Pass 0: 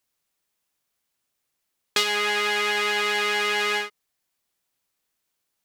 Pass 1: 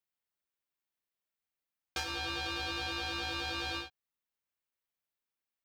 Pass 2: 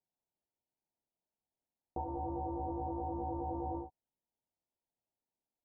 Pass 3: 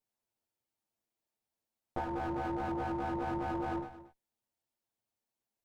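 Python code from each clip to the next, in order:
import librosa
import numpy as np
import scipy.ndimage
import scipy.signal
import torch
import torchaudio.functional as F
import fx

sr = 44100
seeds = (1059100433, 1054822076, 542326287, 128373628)

y1 = fx.peak_eq(x, sr, hz=7300.0, db=-10.0, octaves=2.6)
y1 = y1 * np.sin(2.0 * np.pi * 2000.0 * np.arange(len(y1)) / sr)
y1 = y1 * 10.0 ** (-7.5 / 20.0)
y2 = scipy.signal.sosfilt(scipy.signal.cheby1(6, 3, 960.0, 'lowpass', fs=sr, output='sos'), y1)
y2 = y2 * 10.0 ** (6.0 / 20.0)
y3 = fx.lower_of_two(y2, sr, delay_ms=8.9)
y3 = y3 + 10.0 ** (-15.5 / 20.0) * np.pad(y3, (int(228 * sr / 1000.0), 0))[:len(y3)]
y3 = y3 * 10.0 ** (4.0 / 20.0)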